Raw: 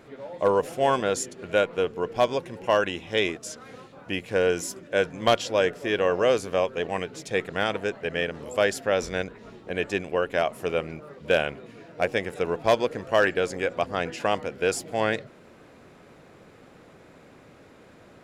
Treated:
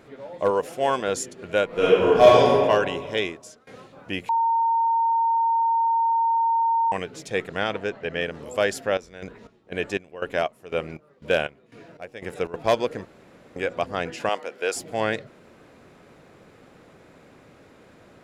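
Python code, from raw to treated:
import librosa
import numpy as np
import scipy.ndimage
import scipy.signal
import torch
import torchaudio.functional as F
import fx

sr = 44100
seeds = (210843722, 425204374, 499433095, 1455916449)

y = fx.low_shelf(x, sr, hz=150.0, db=-9.0, at=(0.5, 1.08))
y = fx.reverb_throw(y, sr, start_s=1.66, length_s=0.84, rt60_s=1.9, drr_db=-10.0)
y = fx.lowpass(y, sr, hz=5900.0, slope=12, at=(7.6, 8.21))
y = fx.chopper(y, sr, hz=2.0, depth_pct=80, duty_pct=50, at=(8.72, 12.54))
y = fx.highpass(y, sr, hz=420.0, slope=12, at=(14.29, 14.76))
y = fx.edit(y, sr, fx.fade_out_to(start_s=3.1, length_s=0.57, floor_db=-21.0),
    fx.bleep(start_s=4.29, length_s=2.63, hz=916.0, db=-18.0),
    fx.room_tone_fill(start_s=13.05, length_s=0.51), tone=tone)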